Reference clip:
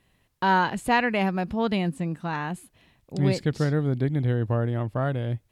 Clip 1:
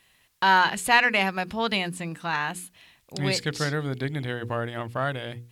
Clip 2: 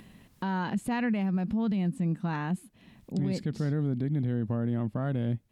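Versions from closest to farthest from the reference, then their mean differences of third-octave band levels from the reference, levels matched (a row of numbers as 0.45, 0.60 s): 2, 1; 3.5, 6.0 dB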